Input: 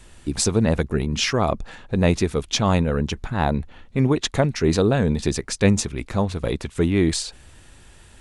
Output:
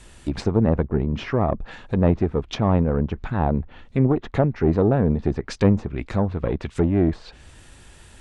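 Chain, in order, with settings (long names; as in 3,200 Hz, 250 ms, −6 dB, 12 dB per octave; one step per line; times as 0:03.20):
one-sided soft clipper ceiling −16.5 dBFS
treble cut that deepens with the level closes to 1,100 Hz, closed at −19.5 dBFS
level +1.5 dB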